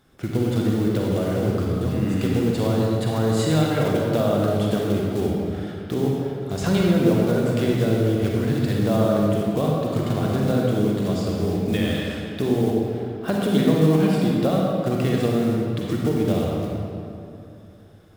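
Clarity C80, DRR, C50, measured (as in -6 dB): -0.5 dB, -3.0 dB, -2.0 dB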